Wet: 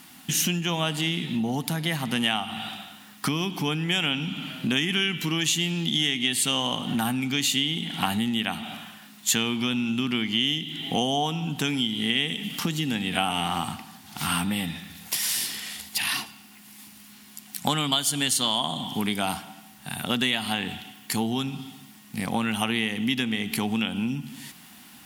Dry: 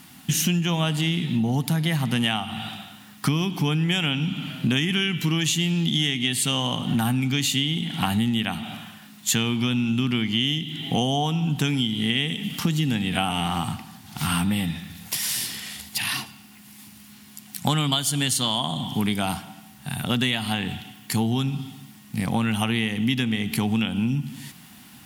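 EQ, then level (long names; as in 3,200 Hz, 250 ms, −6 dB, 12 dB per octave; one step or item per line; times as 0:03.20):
low-shelf EQ 73 Hz −6 dB
parametric band 120 Hz −8.5 dB 1.2 octaves
0.0 dB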